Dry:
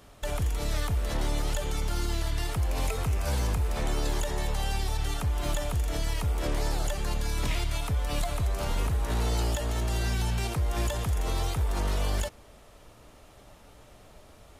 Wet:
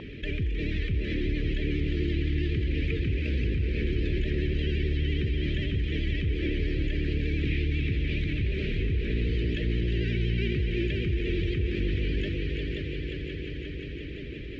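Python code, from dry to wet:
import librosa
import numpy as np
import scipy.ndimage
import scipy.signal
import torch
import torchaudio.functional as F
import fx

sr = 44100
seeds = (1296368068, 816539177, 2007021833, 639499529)

y = scipy.signal.sosfilt(scipy.signal.ellip(3, 1.0, 70, [380.0, 2100.0], 'bandstop', fs=sr, output='sos'), x)
y = fx.peak_eq(y, sr, hz=830.0, db=9.0, octaves=2.1)
y = fx.notch_comb(y, sr, f0_hz=710.0)
y = fx.echo_heads(y, sr, ms=177, heads='second and third', feedback_pct=61, wet_db=-6.5)
y = fx.vibrato(y, sr, rate_hz=12.0, depth_cents=69.0)
y = scipy.signal.sosfilt(scipy.signal.butter(4, 3000.0, 'lowpass', fs=sr, output='sos'), y)
y = fx.env_flatten(y, sr, amount_pct=50)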